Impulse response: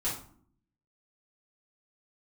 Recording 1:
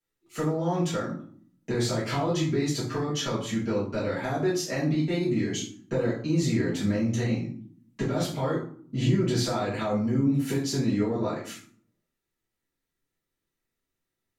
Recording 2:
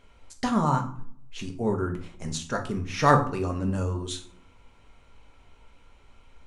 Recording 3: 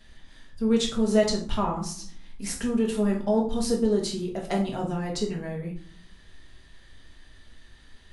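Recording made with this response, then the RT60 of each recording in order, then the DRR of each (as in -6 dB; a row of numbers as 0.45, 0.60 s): 1; 0.55, 0.55, 0.55 s; -9.5, 3.5, -2.0 dB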